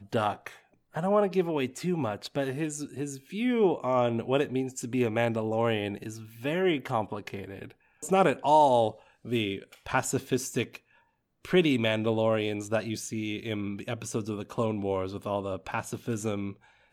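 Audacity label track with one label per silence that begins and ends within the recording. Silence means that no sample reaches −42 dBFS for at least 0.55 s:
10.760000	11.450000	silence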